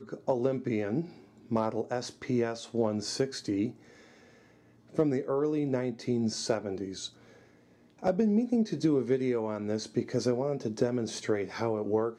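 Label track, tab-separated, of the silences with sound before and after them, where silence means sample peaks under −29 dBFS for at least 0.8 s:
3.680000	4.980000	silence
7.060000	8.040000	silence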